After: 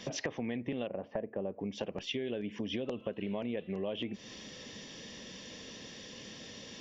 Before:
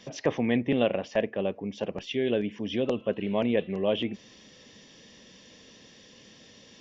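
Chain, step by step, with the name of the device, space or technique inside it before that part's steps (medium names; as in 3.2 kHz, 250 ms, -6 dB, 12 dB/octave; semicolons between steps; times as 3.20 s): 0.87–1.60 s: low-pass 1.1 kHz 12 dB/octave; serial compression, leveller first (compression 2.5:1, threshold -29 dBFS, peak gain reduction 7.5 dB; compression 4:1, threshold -40 dBFS, peak gain reduction 13 dB); trim +5 dB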